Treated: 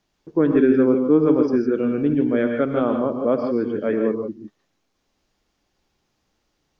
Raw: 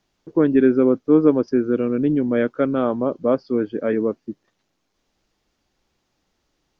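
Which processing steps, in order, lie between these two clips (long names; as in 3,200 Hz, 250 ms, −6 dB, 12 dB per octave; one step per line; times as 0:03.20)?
reverb whose tail is shaped and stops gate 180 ms rising, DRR 3.5 dB
level −1.5 dB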